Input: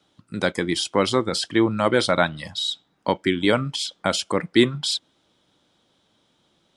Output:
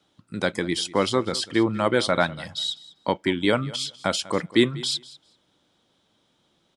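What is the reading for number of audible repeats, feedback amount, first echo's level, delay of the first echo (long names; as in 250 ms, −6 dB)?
1, repeats not evenly spaced, −19.5 dB, 195 ms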